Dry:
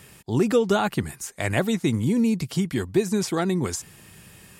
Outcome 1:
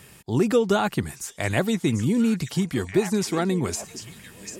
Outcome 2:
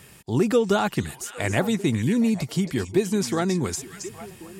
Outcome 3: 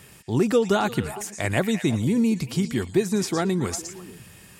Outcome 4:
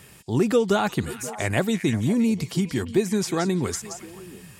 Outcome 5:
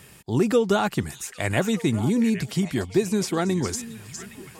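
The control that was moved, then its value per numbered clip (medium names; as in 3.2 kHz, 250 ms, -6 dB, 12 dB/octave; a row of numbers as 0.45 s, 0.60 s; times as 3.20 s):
repeats whose band climbs or falls, time: 742 ms, 271 ms, 115 ms, 176 ms, 408 ms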